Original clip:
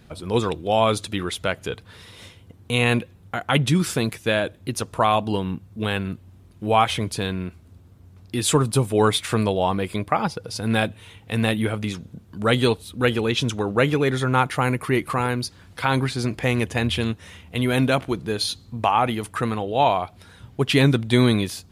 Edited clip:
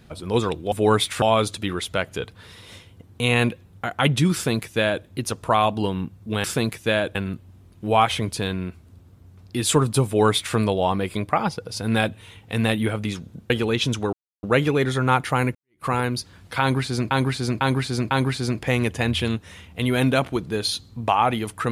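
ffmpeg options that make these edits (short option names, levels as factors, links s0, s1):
-filter_complex "[0:a]asplit=11[s0][s1][s2][s3][s4][s5][s6][s7][s8][s9][s10];[s0]atrim=end=0.722[s11];[s1]atrim=start=8.848:end=9.352[s12];[s2]atrim=start=0.718:end=5.942[s13];[s3]atrim=start=3.838:end=4.552[s14];[s4]atrim=start=5.938:end=12.292[s15];[s5]atrim=start=13.058:end=13.69,asetpts=PTS-STARTPTS,afade=t=out:st=0.628:d=0.004:c=hsin,apad=pad_dur=0.3[s16];[s6]atrim=start=13.69:end=14.81,asetpts=PTS-STARTPTS,afade=t=in:d=0.004:c=hsin,afade=t=out:st=1.116:d=0.004:c=hsin[s17];[s7]atrim=start=14.81:end=16.372,asetpts=PTS-STARTPTS,afade=t=in:d=0.31:c=exp[s18];[s8]atrim=start=15.868:end=16.372[s19];[s9]atrim=start=15.868:end=16.372[s20];[s10]atrim=start=15.868[s21];[s11][s12]acrossfade=d=0.004:c1=hsin:c2=hsin[s22];[s22][s13]acrossfade=d=0.004:c1=hsin:c2=hsin[s23];[s23][s14]acrossfade=d=0.004:c1=hsin:c2=hsin[s24];[s24][s15]acrossfade=d=0.004:c1=hsin:c2=hsin[s25];[s16][s17][s18]concat=n=3:v=0:a=1[s26];[s25][s26]acrossfade=d=0.004:c1=hsin:c2=hsin[s27];[s27][s19]acrossfade=d=0.004:c1=hsin:c2=hsin[s28];[s28][s20]acrossfade=d=0.004:c1=hsin:c2=hsin[s29];[s29][s21]acrossfade=d=0.004:c1=hsin:c2=hsin"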